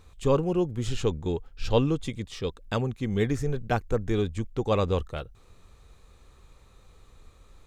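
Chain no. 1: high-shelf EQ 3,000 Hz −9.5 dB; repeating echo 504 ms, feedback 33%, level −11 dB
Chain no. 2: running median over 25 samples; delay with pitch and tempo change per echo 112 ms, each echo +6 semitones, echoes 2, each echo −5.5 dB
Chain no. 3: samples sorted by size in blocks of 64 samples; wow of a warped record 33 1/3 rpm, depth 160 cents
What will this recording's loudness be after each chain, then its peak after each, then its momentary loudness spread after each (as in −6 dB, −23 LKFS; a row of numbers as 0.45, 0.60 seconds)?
−28.5, −27.5, −27.5 LKFS; −11.0, −10.5, −11.0 dBFS; 12, 6, 10 LU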